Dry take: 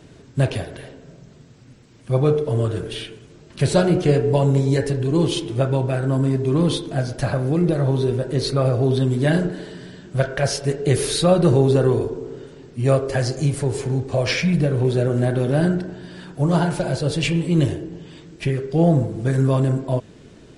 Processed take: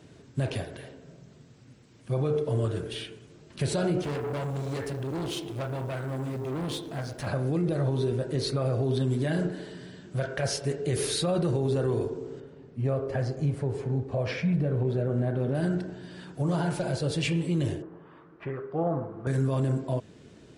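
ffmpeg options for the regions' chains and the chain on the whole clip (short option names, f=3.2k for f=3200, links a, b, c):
-filter_complex "[0:a]asettb=1/sr,asplit=3[a][b][c];[a]atrim=end=4.034[d];[b]atrim=start=4.03:end=7.27,asetpts=PTS-STARTPTS,afade=t=in:d=0.004:c=qsin,afade=t=out:st=3.236:d=0.004:c=qsin,equalizer=f=1.4k:w=0.55:g=3,acrusher=bits=7:mode=log:mix=0:aa=0.000001,aeval=exprs='(tanh(14.1*val(0)+0.5)-tanh(0.5))/14.1':c=same[e];[c]atrim=start=7.266[f];[d][e]acrossfade=d=0.004:c1=hsin:c2=qsin[g];[g][f]acrossfade=d=0.004:c1=qsin:c2=hsin,asettb=1/sr,asplit=3[h][i][j];[h]atrim=end=12.404[k];[i]atrim=start=12.4:end=15.55,asetpts=PTS-STARTPTS,afade=t=in:d=0.004:c=qsin,afade=t=out:st=3.146:d=0.004:c=qsin,lowpass=f=3.9k:p=1,highshelf=f=2.1k:g=-9.5,bandreject=f=340:w=8.3[l];[j]atrim=start=15.546[m];[k][l]acrossfade=d=0.004:c1=hsin:c2=qsin[n];[n][m]acrossfade=d=0.004:c1=qsin:c2=hsin,asettb=1/sr,asplit=3[o][p][q];[o]atrim=end=17.824[r];[p]atrim=start=17.82:end=19.27,asetpts=PTS-STARTPTS,afade=t=in:d=0.004:c=qsin,afade=t=out:st=1.446:d=0.004:c=qsin,lowpass=f=1.2k:t=q:w=3.8,lowshelf=f=310:g=-11.5[s];[q]atrim=start=19.266[t];[r][s]acrossfade=d=0.004:c1=hsin:c2=qsin[u];[u][t]acrossfade=d=0.004:c1=qsin:c2=hsin,highpass=56,alimiter=limit=-13dB:level=0:latency=1:release=34,volume=-6dB"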